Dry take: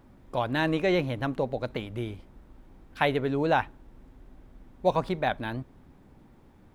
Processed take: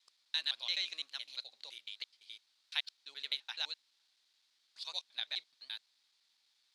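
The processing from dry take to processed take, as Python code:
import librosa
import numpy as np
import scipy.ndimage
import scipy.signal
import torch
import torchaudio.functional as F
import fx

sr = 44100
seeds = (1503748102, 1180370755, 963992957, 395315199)

y = fx.block_reorder(x, sr, ms=85.0, group=4)
y = fx.ladder_bandpass(y, sr, hz=4800.0, resonance_pct=60)
y = F.gain(torch.from_numpy(y), 13.0).numpy()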